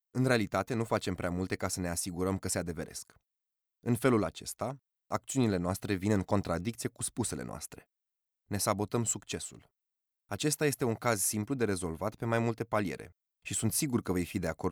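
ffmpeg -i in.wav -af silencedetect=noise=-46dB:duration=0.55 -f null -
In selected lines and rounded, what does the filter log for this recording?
silence_start: 3.12
silence_end: 3.84 | silence_duration: 0.72
silence_start: 7.81
silence_end: 8.51 | silence_duration: 0.70
silence_start: 9.63
silence_end: 10.31 | silence_duration: 0.67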